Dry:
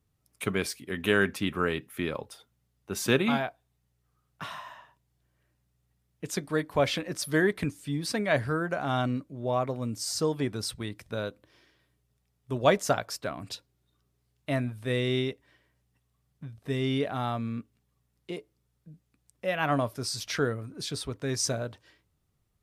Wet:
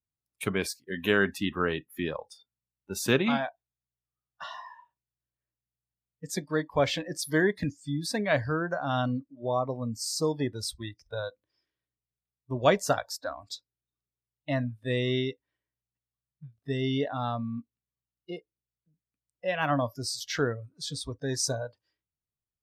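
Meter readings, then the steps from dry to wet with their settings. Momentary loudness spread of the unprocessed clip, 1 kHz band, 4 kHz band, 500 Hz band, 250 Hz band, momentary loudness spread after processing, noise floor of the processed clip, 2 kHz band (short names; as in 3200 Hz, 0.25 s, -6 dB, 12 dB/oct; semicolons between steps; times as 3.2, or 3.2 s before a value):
15 LU, 0.0 dB, 0.0 dB, 0.0 dB, -0.5 dB, 16 LU, under -85 dBFS, 0.0 dB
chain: spectral noise reduction 22 dB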